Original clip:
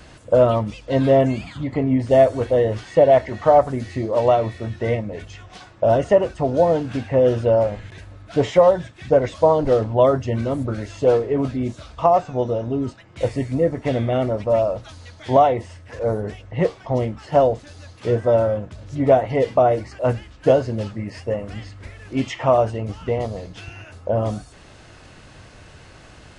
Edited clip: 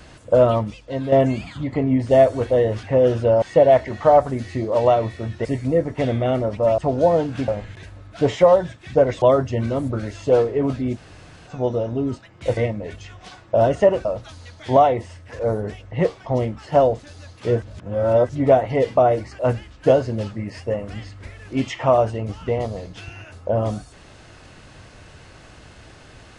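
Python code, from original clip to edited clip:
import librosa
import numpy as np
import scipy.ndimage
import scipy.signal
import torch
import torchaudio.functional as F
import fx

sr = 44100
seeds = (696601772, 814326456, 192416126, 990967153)

y = fx.edit(x, sr, fx.fade_out_to(start_s=0.6, length_s=0.52, curve='qua', floor_db=-8.5),
    fx.swap(start_s=4.86, length_s=1.48, other_s=13.32, other_length_s=1.33),
    fx.move(start_s=7.04, length_s=0.59, to_s=2.83),
    fx.cut(start_s=9.37, length_s=0.6),
    fx.room_tone_fill(start_s=11.71, length_s=0.53, crossfade_s=0.06),
    fx.reverse_span(start_s=18.22, length_s=0.67), tone=tone)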